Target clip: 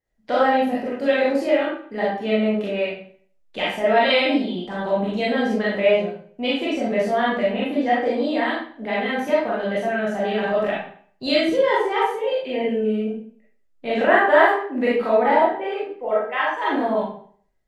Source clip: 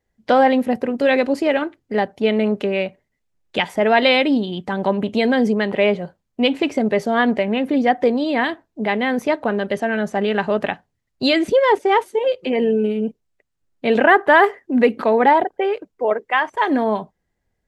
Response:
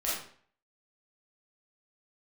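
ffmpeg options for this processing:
-filter_complex "[1:a]atrim=start_sample=2205[a];[0:a][a]afir=irnorm=-1:irlink=0,volume=-9dB"

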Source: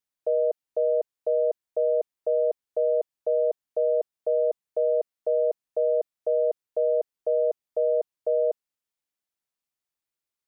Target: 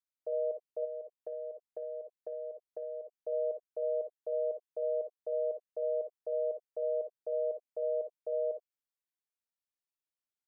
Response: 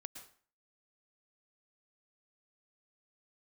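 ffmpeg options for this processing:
-filter_complex "[1:a]atrim=start_sample=2205,afade=t=out:st=0.21:d=0.01,atrim=end_sample=9702,asetrate=88200,aresample=44100[a];[0:a][a]afir=irnorm=-1:irlink=0,asplit=3[b][c][d];[b]afade=t=out:st=0.84:d=0.02[e];[c]acompressor=threshold=-38dB:ratio=6,afade=t=in:st=0.84:d=0.02,afade=t=out:st=3.13:d=0.02[f];[d]afade=t=in:st=3.13:d=0.02[g];[e][f][g]amix=inputs=3:normalize=0"

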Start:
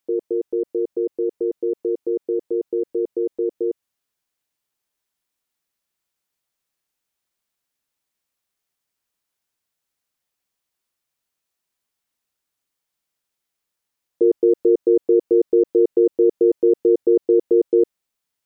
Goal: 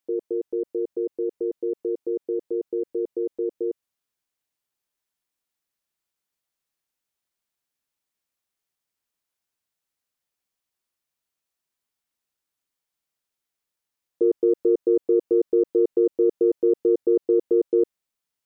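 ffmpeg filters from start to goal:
-af "aeval=exprs='0.447*(cos(1*acos(clip(val(0)/0.447,-1,1)))-cos(1*PI/2))+0.00282*(cos(3*acos(clip(val(0)/0.447,-1,1)))-cos(3*PI/2))':c=same,volume=-4dB"

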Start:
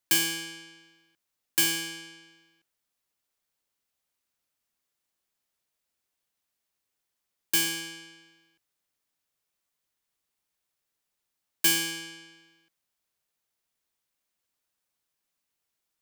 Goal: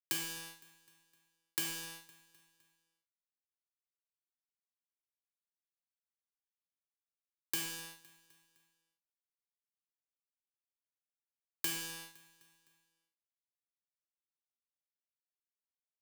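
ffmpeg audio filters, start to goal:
-filter_complex "[0:a]acrossover=split=210|1100[a][b][c];[a]acompressor=threshold=-56dB:ratio=4[d];[b]acompressor=threshold=-51dB:ratio=4[e];[c]acompressor=threshold=-37dB:ratio=4[f];[d][e][f]amix=inputs=3:normalize=0,acrusher=bits=5:mix=0:aa=0.5,asplit=2[g][h];[h]aecho=0:1:256|512|768|1024:0.0891|0.0463|0.0241|0.0125[i];[g][i]amix=inputs=2:normalize=0"

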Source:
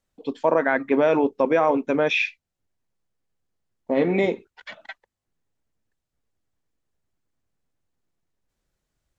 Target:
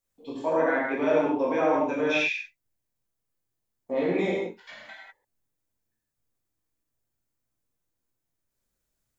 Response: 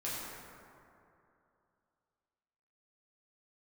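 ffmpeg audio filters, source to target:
-filter_complex "[0:a]aemphasis=mode=production:type=50kf[a];[1:a]atrim=start_sample=2205,afade=t=out:st=0.25:d=0.01,atrim=end_sample=11466[b];[a][b]afir=irnorm=-1:irlink=0,volume=-7dB"

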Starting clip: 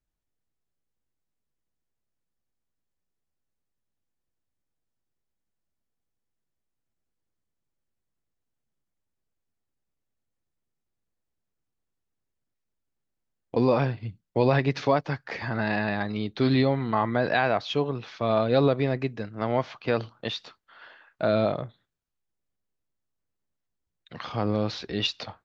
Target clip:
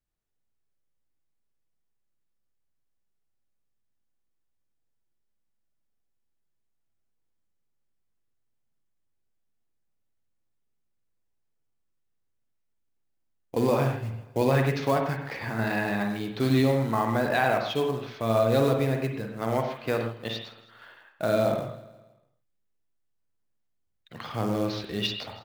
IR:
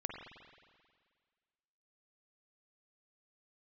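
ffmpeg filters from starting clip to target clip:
-filter_complex "[0:a]acrusher=bits=5:mode=log:mix=0:aa=0.000001,aecho=1:1:161|322|483|644:0.126|0.0579|0.0266|0.0123[a];[1:a]atrim=start_sample=2205,atrim=end_sample=6615[b];[a][b]afir=irnorm=-1:irlink=0"

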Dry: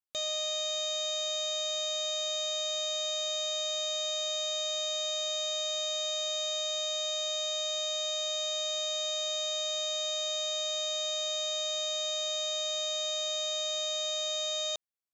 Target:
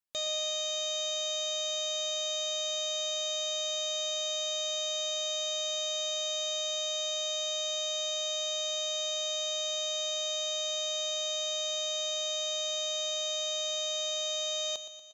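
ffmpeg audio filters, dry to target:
-af "aecho=1:1:118|236|354|472|590|708|826:0.251|0.148|0.0874|0.0516|0.0304|0.018|0.0106"

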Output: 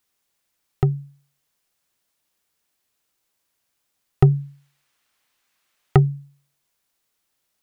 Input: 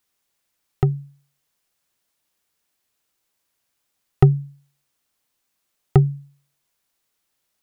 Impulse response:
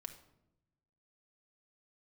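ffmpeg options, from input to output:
-filter_complex "[0:a]asplit=3[a][b][c];[a]afade=t=out:st=4.31:d=0.02[d];[b]equalizer=f=1.9k:w=0.46:g=9,afade=t=in:st=4.31:d=0.02,afade=t=out:st=6.05:d=0.02[e];[c]afade=t=in:st=6.05:d=0.02[f];[d][e][f]amix=inputs=3:normalize=0,asplit=2[g][h];[h]asoftclip=type=tanh:threshold=-11.5dB,volume=-9dB[i];[g][i]amix=inputs=2:normalize=0,volume=-2.5dB"

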